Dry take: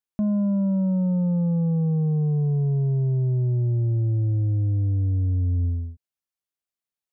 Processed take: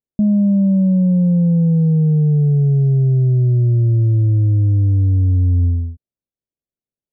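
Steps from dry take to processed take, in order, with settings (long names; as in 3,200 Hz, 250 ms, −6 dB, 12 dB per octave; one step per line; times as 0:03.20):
drawn EQ curve 260 Hz 0 dB, 580 Hz −4 dB, 1,300 Hz −29 dB
level +8.5 dB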